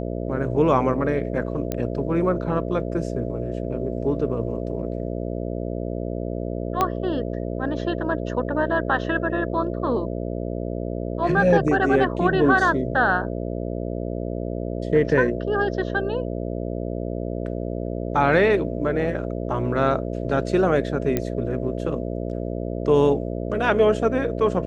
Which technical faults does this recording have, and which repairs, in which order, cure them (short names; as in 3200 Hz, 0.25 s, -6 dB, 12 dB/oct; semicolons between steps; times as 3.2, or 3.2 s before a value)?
buzz 60 Hz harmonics 11 -28 dBFS
1.72 pop -11 dBFS
6.81 pop -7 dBFS
21.17 pop -9 dBFS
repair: de-click; de-hum 60 Hz, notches 11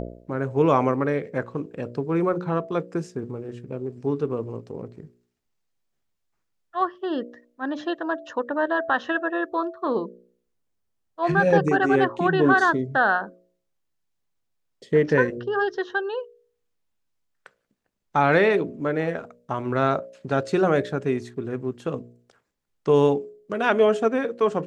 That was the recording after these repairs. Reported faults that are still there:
6.81 pop